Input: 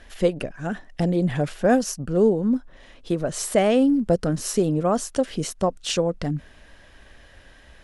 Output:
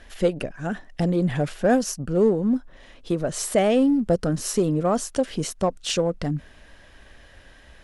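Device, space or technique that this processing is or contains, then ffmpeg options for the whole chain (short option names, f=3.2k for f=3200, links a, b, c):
parallel distortion: -filter_complex "[0:a]asplit=2[a][b];[b]asoftclip=type=hard:threshold=-19.5dB,volume=-11dB[c];[a][c]amix=inputs=2:normalize=0,volume=-2dB"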